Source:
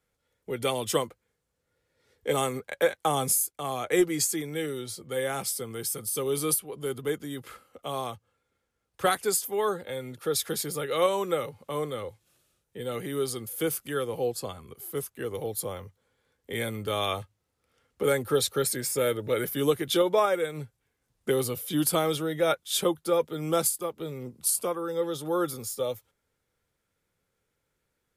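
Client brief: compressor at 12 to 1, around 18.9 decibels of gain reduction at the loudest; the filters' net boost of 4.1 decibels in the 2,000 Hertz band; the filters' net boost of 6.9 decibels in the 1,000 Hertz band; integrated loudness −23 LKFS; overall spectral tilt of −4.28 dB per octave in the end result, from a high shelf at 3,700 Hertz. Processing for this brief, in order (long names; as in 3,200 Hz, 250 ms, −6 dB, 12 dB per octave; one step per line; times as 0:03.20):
parametric band 1,000 Hz +8.5 dB
parametric band 2,000 Hz +4 dB
high-shelf EQ 3,700 Hz −7.5 dB
downward compressor 12 to 1, threshold −35 dBFS
level +17 dB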